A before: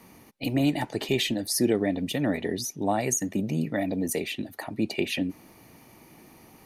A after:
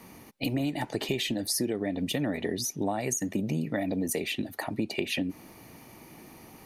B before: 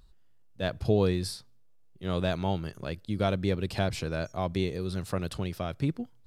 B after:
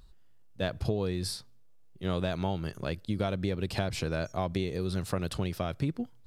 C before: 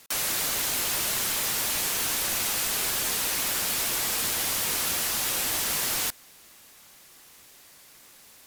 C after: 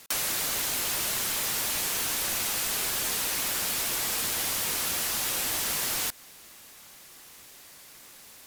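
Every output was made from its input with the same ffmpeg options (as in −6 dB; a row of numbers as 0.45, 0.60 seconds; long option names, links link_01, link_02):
-af "acompressor=threshold=-28dB:ratio=10,volume=2.5dB"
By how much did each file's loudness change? −3.0, −2.0, −1.5 LU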